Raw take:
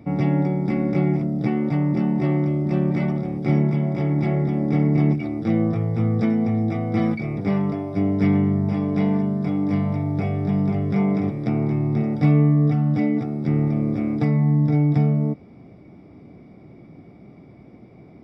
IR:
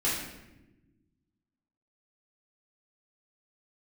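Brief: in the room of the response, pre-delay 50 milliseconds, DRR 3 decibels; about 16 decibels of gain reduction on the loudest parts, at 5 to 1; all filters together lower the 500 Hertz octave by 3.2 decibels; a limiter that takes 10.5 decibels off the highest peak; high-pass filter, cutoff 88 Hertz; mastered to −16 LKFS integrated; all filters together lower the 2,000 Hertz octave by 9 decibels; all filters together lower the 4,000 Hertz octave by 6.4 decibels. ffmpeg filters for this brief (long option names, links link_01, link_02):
-filter_complex "[0:a]highpass=88,equalizer=frequency=500:width_type=o:gain=-4,equalizer=frequency=2000:width_type=o:gain=-8.5,equalizer=frequency=4000:width_type=o:gain=-5.5,acompressor=threshold=-32dB:ratio=5,alimiter=level_in=8.5dB:limit=-24dB:level=0:latency=1,volume=-8.5dB,asplit=2[link_01][link_02];[1:a]atrim=start_sample=2205,adelay=50[link_03];[link_02][link_03]afir=irnorm=-1:irlink=0,volume=-12.5dB[link_04];[link_01][link_04]amix=inputs=2:normalize=0,volume=21dB"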